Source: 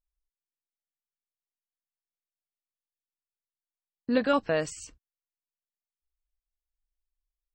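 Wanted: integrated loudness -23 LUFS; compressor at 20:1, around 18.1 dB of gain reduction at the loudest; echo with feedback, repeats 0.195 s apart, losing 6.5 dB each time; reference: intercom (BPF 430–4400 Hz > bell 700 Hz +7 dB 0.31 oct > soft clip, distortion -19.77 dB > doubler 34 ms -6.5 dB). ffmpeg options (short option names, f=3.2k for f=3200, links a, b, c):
-filter_complex "[0:a]acompressor=threshold=-37dB:ratio=20,highpass=430,lowpass=4.4k,equalizer=f=700:t=o:w=0.31:g=7,aecho=1:1:195|390|585|780|975|1170:0.473|0.222|0.105|0.0491|0.0231|0.0109,asoftclip=threshold=-31dB,asplit=2[a][b];[b]adelay=34,volume=-6.5dB[c];[a][c]amix=inputs=2:normalize=0,volume=21.5dB"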